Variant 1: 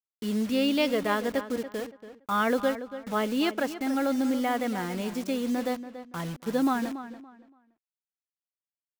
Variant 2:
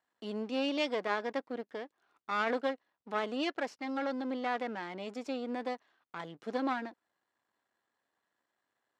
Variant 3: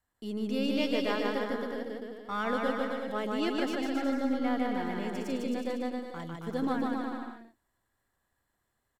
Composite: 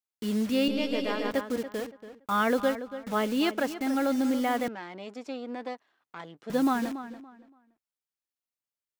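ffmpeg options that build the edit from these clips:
-filter_complex "[0:a]asplit=3[a][b][c];[a]atrim=end=0.682[d];[2:a]atrim=start=0.678:end=1.312[e];[b]atrim=start=1.308:end=4.682[f];[1:a]atrim=start=4.678:end=6.502[g];[c]atrim=start=6.498[h];[d][e]acrossfade=d=0.004:c1=hsin:c2=hsin[i];[i][f]acrossfade=d=0.004:c1=hsin:c2=hsin[j];[j][g]acrossfade=d=0.004:c1=hsin:c2=hsin[k];[k][h]acrossfade=d=0.004:c1=hsin:c2=hsin"

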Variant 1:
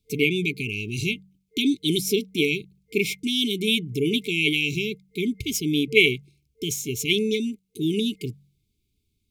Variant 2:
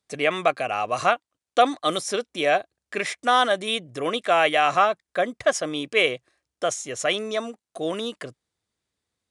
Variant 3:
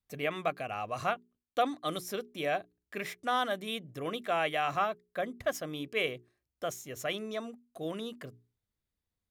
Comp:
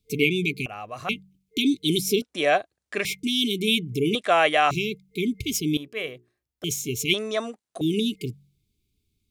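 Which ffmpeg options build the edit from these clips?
-filter_complex "[2:a]asplit=2[a][b];[1:a]asplit=3[c][d][e];[0:a]asplit=6[f][g][h][i][j][k];[f]atrim=end=0.662[l];[a]atrim=start=0.658:end=1.092[m];[g]atrim=start=1.088:end=2.222[n];[c]atrim=start=2.218:end=3.052[o];[h]atrim=start=3.048:end=4.152[p];[d]atrim=start=4.148:end=4.712[q];[i]atrim=start=4.708:end=5.772[r];[b]atrim=start=5.768:end=6.642[s];[j]atrim=start=6.638:end=7.142[t];[e]atrim=start=7.138:end=7.812[u];[k]atrim=start=7.808[v];[l][m]acrossfade=d=0.004:c1=hsin:c2=hsin[w];[w][n]acrossfade=d=0.004:c1=hsin:c2=hsin[x];[x][o]acrossfade=d=0.004:c1=hsin:c2=hsin[y];[y][p]acrossfade=d=0.004:c1=hsin:c2=hsin[z];[z][q]acrossfade=d=0.004:c1=hsin:c2=hsin[aa];[aa][r]acrossfade=d=0.004:c1=hsin:c2=hsin[ab];[ab][s]acrossfade=d=0.004:c1=hsin:c2=hsin[ac];[ac][t]acrossfade=d=0.004:c1=hsin:c2=hsin[ad];[ad][u]acrossfade=d=0.004:c1=hsin:c2=hsin[ae];[ae][v]acrossfade=d=0.004:c1=hsin:c2=hsin"

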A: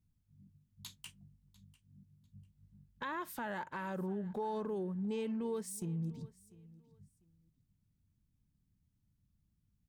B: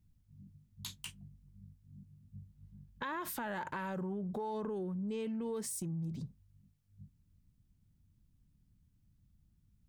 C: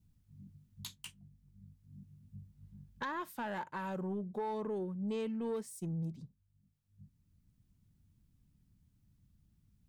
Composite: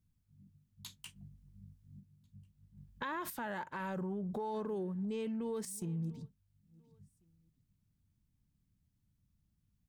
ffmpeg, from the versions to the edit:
-filter_complex "[1:a]asplit=4[a][b][c][d];[0:a]asplit=6[e][f][g][h][i][j];[e]atrim=end=1.162[k];[a]atrim=start=1.158:end=2.002[l];[f]atrim=start=1.998:end=2.772[m];[b]atrim=start=2.768:end=3.302[n];[g]atrim=start=3.298:end=3.802[o];[c]atrim=start=3.798:end=4.542[p];[h]atrim=start=4.538:end=5.052[q];[d]atrim=start=5.048:end=5.652[r];[i]atrim=start=5.648:end=6.31[s];[2:a]atrim=start=6.15:end=6.81[t];[j]atrim=start=6.65[u];[k][l]acrossfade=d=0.004:c1=hsin:c2=hsin[v];[v][m]acrossfade=d=0.004:c1=hsin:c2=hsin[w];[w][n]acrossfade=d=0.004:c1=hsin:c2=hsin[x];[x][o]acrossfade=d=0.004:c1=hsin:c2=hsin[y];[y][p]acrossfade=d=0.004:c1=hsin:c2=hsin[z];[z][q]acrossfade=d=0.004:c1=hsin:c2=hsin[aa];[aa][r]acrossfade=d=0.004:c1=hsin:c2=hsin[ab];[ab][s]acrossfade=d=0.004:c1=hsin:c2=hsin[ac];[ac][t]acrossfade=d=0.16:c1=tri:c2=tri[ad];[ad][u]acrossfade=d=0.16:c1=tri:c2=tri"

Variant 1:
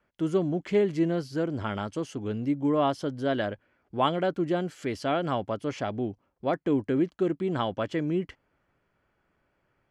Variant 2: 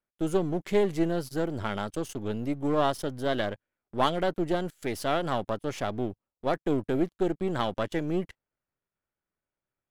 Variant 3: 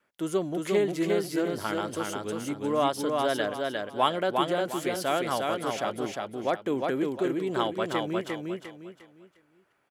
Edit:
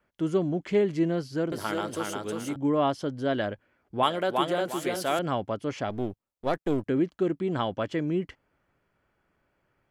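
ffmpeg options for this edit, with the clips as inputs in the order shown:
-filter_complex "[2:a]asplit=2[a][b];[0:a]asplit=4[c][d][e][f];[c]atrim=end=1.522[g];[a]atrim=start=1.518:end=2.562[h];[d]atrim=start=2.558:end=4.032[i];[b]atrim=start=4.028:end=5.192[j];[e]atrim=start=5.188:end=5.902[k];[1:a]atrim=start=5.898:end=6.862[l];[f]atrim=start=6.858[m];[g][h]acrossfade=d=0.004:c1=hsin:c2=hsin[n];[n][i]acrossfade=d=0.004:c1=hsin:c2=hsin[o];[o][j]acrossfade=d=0.004:c1=hsin:c2=hsin[p];[p][k]acrossfade=d=0.004:c1=hsin:c2=hsin[q];[q][l]acrossfade=d=0.004:c1=hsin:c2=hsin[r];[r][m]acrossfade=d=0.004:c1=hsin:c2=hsin"

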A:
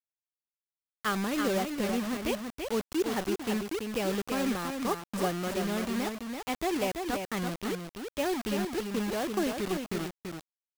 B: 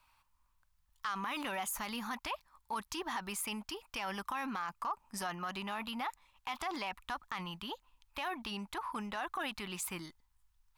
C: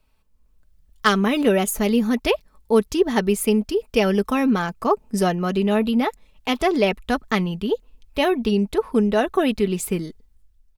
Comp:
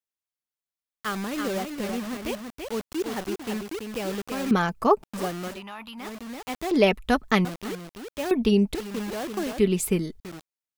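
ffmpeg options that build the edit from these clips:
-filter_complex "[2:a]asplit=4[a][b][c][d];[0:a]asplit=6[e][f][g][h][i][j];[e]atrim=end=4.512[k];[a]atrim=start=4.508:end=5.032[l];[f]atrim=start=5.028:end=5.62[m];[1:a]atrim=start=5.46:end=6.13[n];[g]atrim=start=5.97:end=6.712[o];[b]atrim=start=6.708:end=7.452[p];[h]atrim=start=7.448:end=8.312[q];[c]atrim=start=8.308:end=8.752[r];[i]atrim=start=8.748:end=9.592[s];[d]atrim=start=9.588:end=10.202[t];[j]atrim=start=10.198[u];[k][l]acrossfade=d=0.004:c1=hsin:c2=hsin[v];[v][m]acrossfade=d=0.004:c1=hsin:c2=hsin[w];[w][n]acrossfade=d=0.16:c1=tri:c2=tri[x];[x][o]acrossfade=d=0.16:c1=tri:c2=tri[y];[y][p]acrossfade=d=0.004:c1=hsin:c2=hsin[z];[z][q]acrossfade=d=0.004:c1=hsin:c2=hsin[aa];[aa][r]acrossfade=d=0.004:c1=hsin:c2=hsin[ab];[ab][s]acrossfade=d=0.004:c1=hsin:c2=hsin[ac];[ac][t]acrossfade=d=0.004:c1=hsin:c2=hsin[ad];[ad][u]acrossfade=d=0.004:c1=hsin:c2=hsin"

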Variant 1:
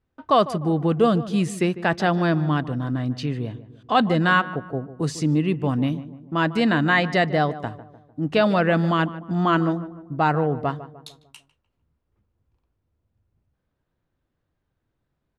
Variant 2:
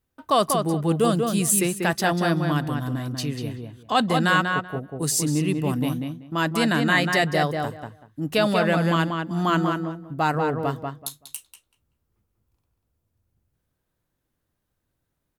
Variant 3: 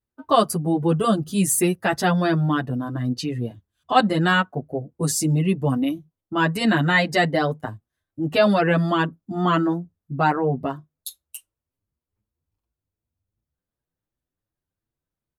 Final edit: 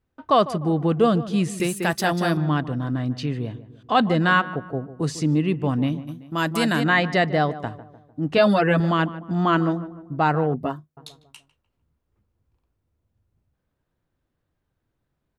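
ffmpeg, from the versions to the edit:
-filter_complex "[1:a]asplit=2[a][b];[2:a]asplit=2[c][d];[0:a]asplit=5[e][f][g][h][i];[e]atrim=end=1.602[j];[a]atrim=start=1.598:end=2.372[k];[f]atrim=start=2.368:end=6.09[l];[b]atrim=start=6.07:end=6.85[m];[g]atrim=start=6.83:end=8.382[n];[c]atrim=start=8.378:end=8.802[o];[h]atrim=start=8.798:end=10.542[p];[d]atrim=start=10.538:end=10.972[q];[i]atrim=start=10.968[r];[j][k]acrossfade=d=0.004:c1=hsin:c2=hsin[s];[s][l]acrossfade=d=0.004:c1=hsin:c2=hsin[t];[t][m]acrossfade=d=0.02:c1=tri:c2=tri[u];[u][n]acrossfade=d=0.02:c1=tri:c2=tri[v];[v][o]acrossfade=d=0.004:c1=hsin:c2=hsin[w];[w][p]acrossfade=d=0.004:c1=hsin:c2=hsin[x];[x][q]acrossfade=d=0.004:c1=hsin:c2=hsin[y];[y][r]acrossfade=d=0.004:c1=hsin:c2=hsin"

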